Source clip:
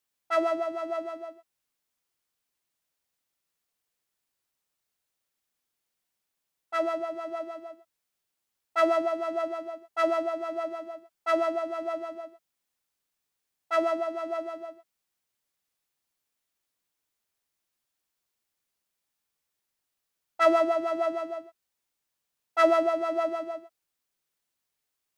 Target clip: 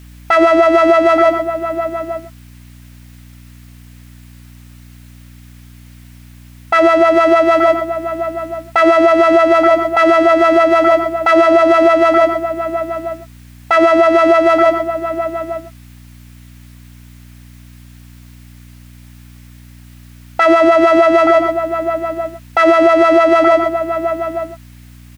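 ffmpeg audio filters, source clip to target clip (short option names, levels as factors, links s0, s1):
-filter_complex "[0:a]equalizer=f=2000:t=o:w=1.4:g=7.5,acompressor=threshold=0.0178:ratio=3,aeval=exprs='val(0)+0.000398*(sin(2*PI*60*n/s)+sin(2*PI*2*60*n/s)/2+sin(2*PI*3*60*n/s)/3+sin(2*PI*4*60*n/s)/4+sin(2*PI*5*60*n/s)/5)':c=same,asplit=2[s0][s1];[s1]adelay=874.6,volume=0.224,highshelf=f=4000:g=-19.7[s2];[s0][s2]amix=inputs=2:normalize=0,alimiter=level_in=42.2:limit=0.891:release=50:level=0:latency=1,volume=0.891"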